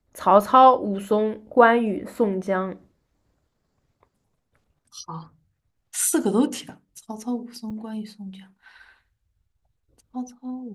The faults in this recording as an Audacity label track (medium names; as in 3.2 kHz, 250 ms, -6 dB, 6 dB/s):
7.700000	7.710000	dropout 5.1 ms